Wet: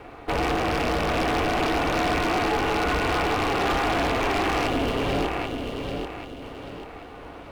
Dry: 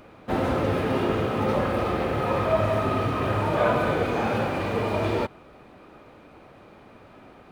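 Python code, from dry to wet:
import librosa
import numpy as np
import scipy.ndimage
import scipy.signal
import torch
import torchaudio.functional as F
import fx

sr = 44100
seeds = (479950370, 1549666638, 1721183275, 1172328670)

p1 = fx.rattle_buzz(x, sr, strikes_db=-32.0, level_db=-20.0)
p2 = scipy.signal.sosfilt(scipy.signal.butter(2, 52.0, 'highpass', fs=sr, output='sos'), p1)
p3 = fx.low_shelf(p2, sr, hz=320.0, db=-7.5)
p4 = fx.over_compress(p3, sr, threshold_db=-31.0, ratio=-1.0)
p5 = p3 + (p4 * 10.0 ** (2.0 / 20.0))
p6 = fx.small_body(p5, sr, hz=(250.0, 500.0, 1000.0, 2100.0), ring_ms=45, db=9)
p7 = p6 * np.sin(2.0 * np.pi * 200.0 * np.arange(len(p6)) / sr)
p8 = fx.spec_erase(p7, sr, start_s=4.67, length_s=1.75, low_hz=620.0, high_hz=2700.0)
p9 = p8 + fx.echo_feedback(p8, sr, ms=787, feedback_pct=37, wet_db=-5.5, dry=0)
p10 = 10.0 ** (-15.5 / 20.0) * (np.abs((p9 / 10.0 ** (-15.5 / 20.0) + 3.0) % 4.0 - 2.0) - 1.0)
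y = p10 * 10.0 ** (-1.5 / 20.0)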